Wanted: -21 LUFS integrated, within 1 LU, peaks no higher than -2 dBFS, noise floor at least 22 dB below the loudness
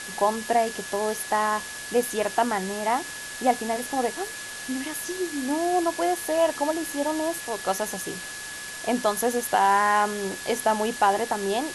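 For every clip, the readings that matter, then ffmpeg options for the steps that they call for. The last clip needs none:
steady tone 1.7 kHz; tone level -38 dBFS; noise floor -37 dBFS; noise floor target -48 dBFS; loudness -25.5 LUFS; peak level -9.0 dBFS; loudness target -21.0 LUFS
-> -af "bandreject=f=1700:w=30"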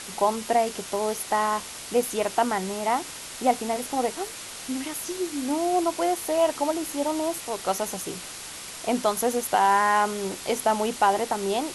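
steady tone not found; noise floor -39 dBFS; noise floor target -48 dBFS
-> -af "afftdn=nr=9:nf=-39"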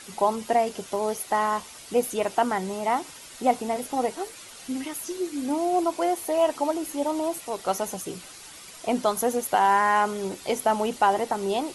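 noise floor -45 dBFS; noise floor target -48 dBFS
-> -af "afftdn=nr=6:nf=-45"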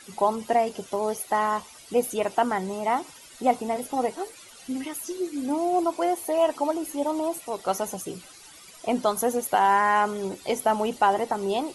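noise floor -48 dBFS; loudness -26.0 LUFS; peak level -9.0 dBFS; loudness target -21.0 LUFS
-> -af "volume=1.78"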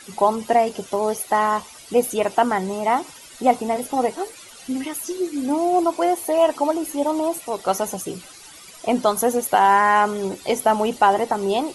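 loudness -21.0 LUFS; peak level -4.0 dBFS; noise floor -43 dBFS

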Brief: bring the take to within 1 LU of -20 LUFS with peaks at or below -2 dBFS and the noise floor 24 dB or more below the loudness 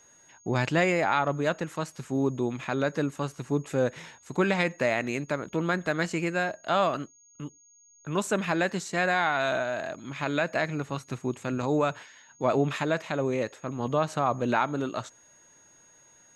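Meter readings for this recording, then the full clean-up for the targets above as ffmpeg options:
steady tone 6.6 kHz; tone level -56 dBFS; loudness -28.5 LUFS; peak level -9.5 dBFS; loudness target -20.0 LUFS
-> -af "bandreject=f=6600:w=30"
-af "volume=2.66,alimiter=limit=0.794:level=0:latency=1"

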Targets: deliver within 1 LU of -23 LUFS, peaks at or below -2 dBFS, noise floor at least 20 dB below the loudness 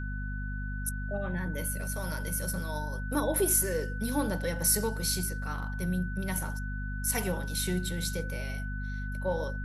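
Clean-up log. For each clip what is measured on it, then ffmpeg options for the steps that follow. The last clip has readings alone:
hum 50 Hz; highest harmonic 250 Hz; hum level -33 dBFS; steady tone 1.5 kHz; tone level -41 dBFS; loudness -31.5 LUFS; peak level -12.0 dBFS; loudness target -23.0 LUFS
-> -af "bandreject=f=50:t=h:w=4,bandreject=f=100:t=h:w=4,bandreject=f=150:t=h:w=4,bandreject=f=200:t=h:w=4,bandreject=f=250:t=h:w=4"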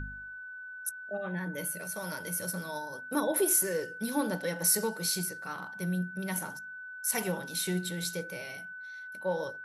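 hum not found; steady tone 1.5 kHz; tone level -41 dBFS
-> -af "bandreject=f=1500:w=30"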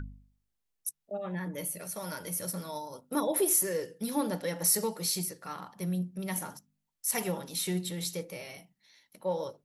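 steady tone not found; loudness -32.0 LUFS; peak level -12.0 dBFS; loudness target -23.0 LUFS
-> -af "volume=2.82"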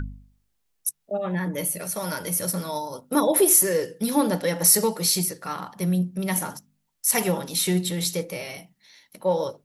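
loudness -23.0 LUFS; peak level -3.0 dBFS; noise floor -73 dBFS

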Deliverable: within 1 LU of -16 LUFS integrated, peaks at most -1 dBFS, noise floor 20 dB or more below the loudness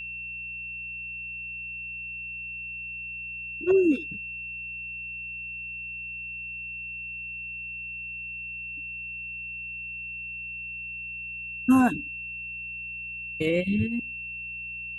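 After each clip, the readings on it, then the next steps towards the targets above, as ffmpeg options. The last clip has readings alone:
hum 60 Hz; highest harmonic 180 Hz; hum level -50 dBFS; steady tone 2.7 kHz; tone level -34 dBFS; loudness -30.5 LUFS; peak level -10.5 dBFS; loudness target -16.0 LUFS
-> -af "bandreject=f=60:t=h:w=4,bandreject=f=120:t=h:w=4,bandreject=f=180:t=h:w=4"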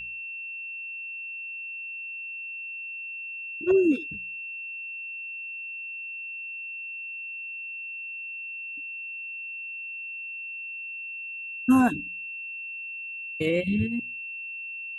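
hum not found; steady tone 2.7 kHz; tone level -34 dBFS
-> -af "bandreject=f=2700:w=30"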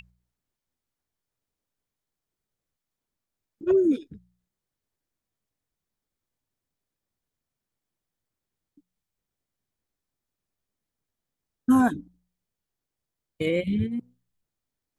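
steady tone not found; loudness -25.0 LUFS; peak level -11.0 dBFS; loudness target -16.0 LUFS
-> -af "volume=2.82"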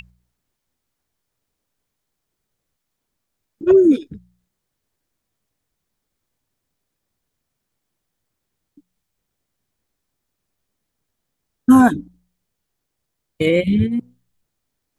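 loudness -16.0 LUFS; peak level -2.0 dBFS; noise floor -78 dBFS

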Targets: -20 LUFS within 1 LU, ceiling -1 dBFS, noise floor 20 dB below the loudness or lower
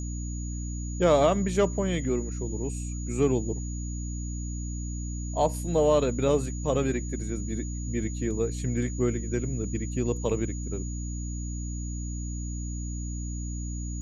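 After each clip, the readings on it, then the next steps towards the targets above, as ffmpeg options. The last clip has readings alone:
hum 60 Hz; highest harmonic 300 Hz; hum level -31 dBFS; steady tone 6.8 kHz; tone level -42 dBFS; loudness -29.5 LUFS; peak level -10.0 dBFS; loudness target -20.0 LUFS
-> -af "bandreject=f=60:t=h:w=6,bandreject=f=120:t=h:w=6,bandreject=f=180:t=h:w=6,bandreject=f=240:t=h:w=6,bandreject=f=300:t=h:w=6"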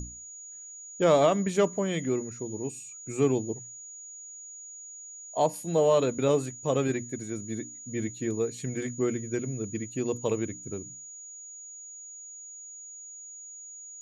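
hum not found; steady tone 6.8 kHz; tone level -42 dBFS
-> -af "bandreject=f=6800:w=30"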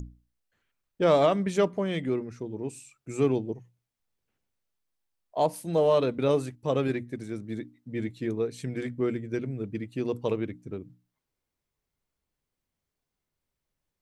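steady tone not found; loudness -28.5 LUFS; peak level -10.5 dBFS; loudness target -20.0 LUFS
-> -af "volume=2.66"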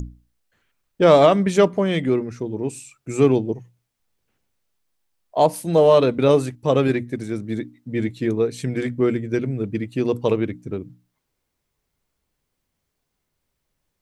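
loudness -20.5 LUFS; peak level -2.0 dBFS; noise floor -77 dBFS

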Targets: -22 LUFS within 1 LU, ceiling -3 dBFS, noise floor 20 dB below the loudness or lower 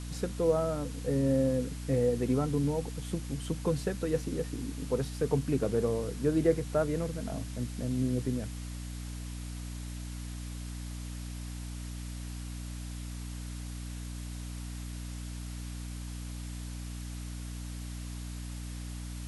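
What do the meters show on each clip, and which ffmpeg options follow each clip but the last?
hum 60 Hz; highest harmonic 300 Hz; hum level -37 dBFS; noise floor -40 dBFS; noise floor target -54 dBFS; loudness -34.0 LUFS; peak level -14.0 dBFS; loudness target -22.0 LUFS
-> -af "bandreject=f=60:t=h:w=4,bandreject=f=120:t=h:w=4,bandreject=f=180:t=h:w=4,bandreject=f=240:t=h:w=4,bandreject=f=300:t=h:w=4"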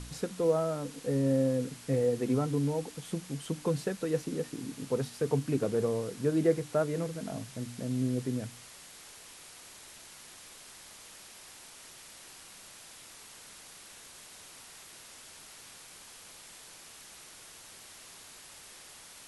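hum not found; noise floor -51 dBFS; noise floor target -52 dBFS
-> -af "afftdn=nr=6:nf=-51"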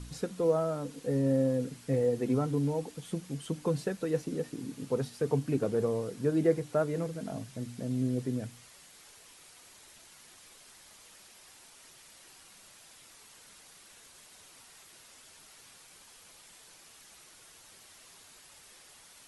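noise floor -56 dBFS; loudness -32.0 LUFS; peak level -15.0 dBFS; loudness target -22.0 LUFS
-> -af "volume=3.16"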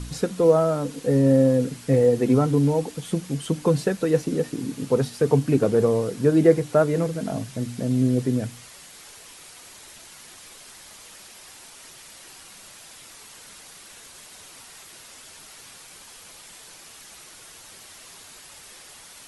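loudness -22.0 LUFS; peak level -5.0 dBFS; noise floor -46 dBFS

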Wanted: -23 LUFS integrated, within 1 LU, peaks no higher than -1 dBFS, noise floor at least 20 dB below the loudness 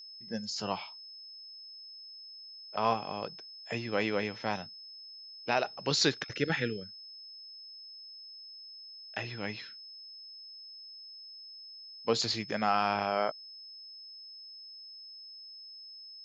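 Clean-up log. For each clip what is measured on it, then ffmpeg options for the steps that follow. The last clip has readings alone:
steady tone 5.2 kHz; tone level -46 dBFS; loudness -36.0 LUFS; peak level -13.0 dBFS; loudness target -23.0 LUFS
-> -af "bandreject=f=5200:w=30"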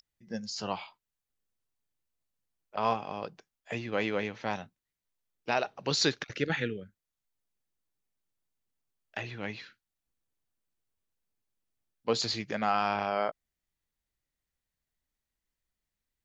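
steady tone not found; loudness -32.5 LUFS; peak level -13.0 dBFS; loudness target -23.0 LUFS
-> -af "volume=2.99"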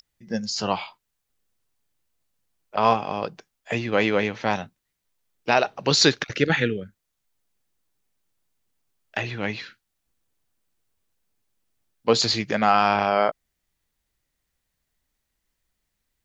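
loudness -23.0 LUFS; peak level -3.5 dBFS; noise floor -79 dBFS

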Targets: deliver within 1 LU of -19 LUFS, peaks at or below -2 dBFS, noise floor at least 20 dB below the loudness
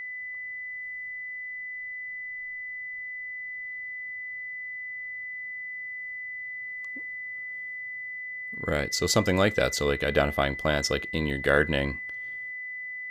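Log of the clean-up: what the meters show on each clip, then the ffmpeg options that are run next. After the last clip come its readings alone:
steady tone 2 kHz; tone level -34 dBFS; loudness -30.0 LUFS; peak level -7.0 dBFS; loudness target -19.0 LUFS
-> -af "bandreject=f=2000:w=30"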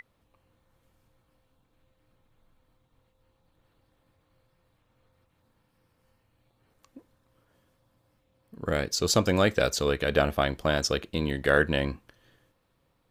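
steady tone not found; loudness -26.0 LUFS; peak level -7.5 dBFS; loudness target -19.0 LUFS
-> -af "volume=2.24,alimiter=limit=0.794:level=0:latency=1"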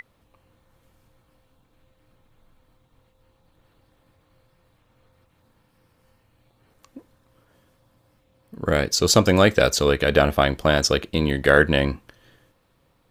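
loudness -19.5 LUFS; peak level -2.0 dBFS; noise floor -65 dBFS

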